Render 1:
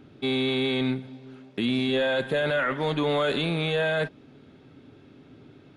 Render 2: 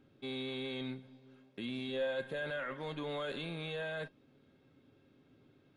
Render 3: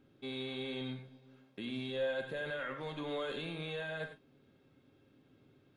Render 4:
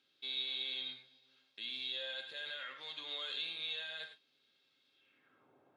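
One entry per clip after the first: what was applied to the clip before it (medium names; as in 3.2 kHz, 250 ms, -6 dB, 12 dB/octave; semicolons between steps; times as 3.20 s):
feedback comb 540 Hz, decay 0.15 s, harmonics all, mix 70%; trim -5.5 dB
gated-style reverb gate 120 ms rising, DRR 7 dB; trim -1 dB
band-pass sweep 4.1 kHz -> 810 Hz, 4.92–5.54 s; trim +10 dB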